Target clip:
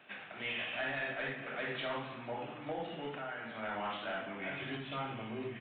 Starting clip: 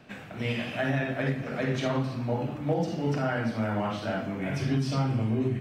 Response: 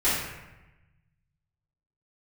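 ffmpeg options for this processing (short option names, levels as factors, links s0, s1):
-filter_complex "[0:a]highpass=f=1300:p=1,asettb=1/sr,asplit=3[s0][s1][s2];[s0]atrim=end=3.084[s3];[s1]atrim=start=3.08:end=3.63,asetpts=PTS-STARTPTS,afade=t=in:d=0.004:c=qsin,afade=t=out:st=0.546:d=0.004:c=qsin,acompressor=threshold=0.0112:ratio=6[s4];[s2]atrim=start=3.626[s5];[s3][s4]acrossfade=d=0.004:c1=hsin:c2=qsin[s6];[s6][s5]acrossfade=d=0.004:c1=qsin:c2=hsin,asoftclip=type=tanh:threshold=0.0266,aresample=8000,aresample=44100,asplit=2[s7][s8];[1:a]atrim=start_sample=2205[s9];[s8][s9]afir=irnorm=-1:irlink=0,volume=0.0631[s10];[s7][s10]amix=inputs=2:normalize=0"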